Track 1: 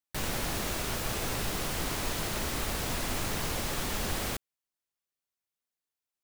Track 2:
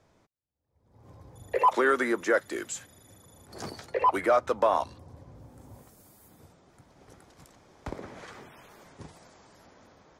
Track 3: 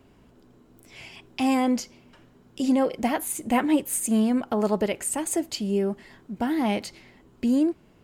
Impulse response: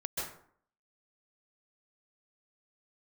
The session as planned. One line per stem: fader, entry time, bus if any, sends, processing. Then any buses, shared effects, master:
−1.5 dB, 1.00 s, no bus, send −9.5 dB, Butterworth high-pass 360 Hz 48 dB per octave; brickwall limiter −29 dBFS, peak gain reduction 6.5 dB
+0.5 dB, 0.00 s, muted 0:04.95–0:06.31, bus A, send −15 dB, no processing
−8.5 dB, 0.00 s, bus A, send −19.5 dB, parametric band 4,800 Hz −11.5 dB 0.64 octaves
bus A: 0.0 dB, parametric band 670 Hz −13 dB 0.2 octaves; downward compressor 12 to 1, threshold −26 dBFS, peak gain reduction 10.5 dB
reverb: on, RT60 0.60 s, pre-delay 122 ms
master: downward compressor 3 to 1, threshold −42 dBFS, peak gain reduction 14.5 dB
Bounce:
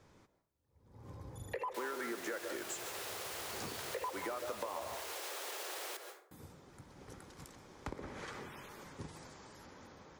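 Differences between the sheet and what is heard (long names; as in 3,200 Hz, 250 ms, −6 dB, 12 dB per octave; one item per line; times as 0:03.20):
stem 1: entry 1.00 s → 1.60 s
stem 3: muted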